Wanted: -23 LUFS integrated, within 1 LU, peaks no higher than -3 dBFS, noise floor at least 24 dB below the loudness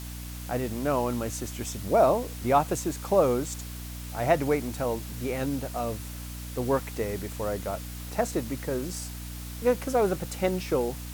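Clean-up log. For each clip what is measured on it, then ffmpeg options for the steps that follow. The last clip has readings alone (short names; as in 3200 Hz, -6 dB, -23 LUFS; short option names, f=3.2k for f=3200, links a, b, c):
hum 60 Hz; harmonics up to 300 Hz; hum level -36 dBFS; noise floor -38 dBFS; noise floor target -53 dBFS; loudness -28.5 LUFS; peak -9.5 dBFS; loudness target -23.0 LUFS
-> -af "bandreject=f=60:t=h:w=6,bandreject=f=120:t=h:w=6,bandreject=f=180:t=h:w=6,bandreject=f=240:t=h:w=6,bandreject=f=300:t=h:w=6"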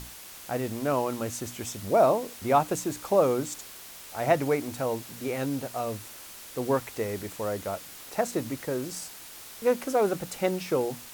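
hum none; noise floor -45 dBFS; noise floor target -53 dBFS
-> -af "afftdn=nr=8:nf=-45"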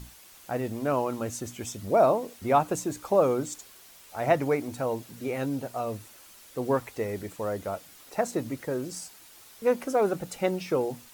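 noise floor -52 dBFS; noise floor target -53 dBFS
-> -af "afftdn=nr=6:nf=-52"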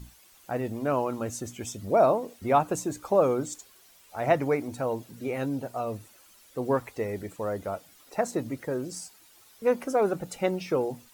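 noise floor -57 dBFS; loudness -28.5 LUFS; peak -9.5 dBFS; loudness target -23.0 LUFS
-> -af "volume=5.5dB"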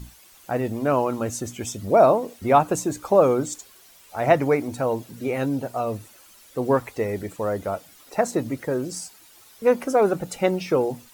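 loudness -23.0 LUFS; peak -4.0 dBFS; noise floor -51 dBFS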